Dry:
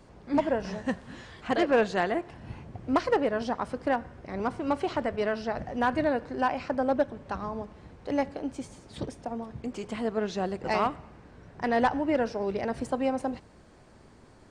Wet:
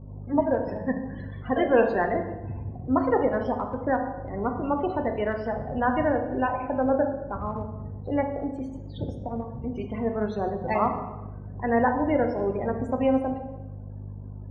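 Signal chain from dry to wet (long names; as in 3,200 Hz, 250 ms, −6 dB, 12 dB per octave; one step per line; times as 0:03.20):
mains hum 50 Hz, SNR 14 dB
spectral peaks only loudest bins 32
transient designer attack −2 dB, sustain −8 dB
on a send: convolution reverb RT60 1.1 s, pre-delay 3 ms, DRR 5 dB
on the sum: level +2 dB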